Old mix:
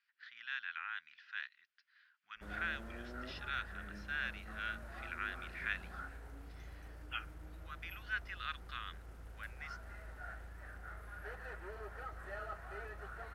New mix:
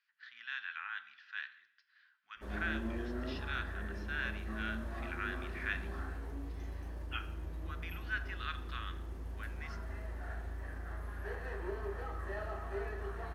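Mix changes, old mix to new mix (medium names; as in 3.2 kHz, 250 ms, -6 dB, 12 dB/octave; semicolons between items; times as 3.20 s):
background: add peaking EQ 1.4 kHz -8.5 dB 0.33 oct; reverb: on, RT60 0.70 s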